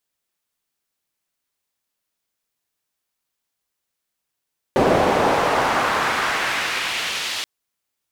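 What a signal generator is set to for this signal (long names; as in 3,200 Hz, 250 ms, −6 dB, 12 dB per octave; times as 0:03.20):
filter sweep on noise pink, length 2.68 s bandpass, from 470 Hz, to 3,700 Hz, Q 1.2, exponential, gain ramp −10.5 dB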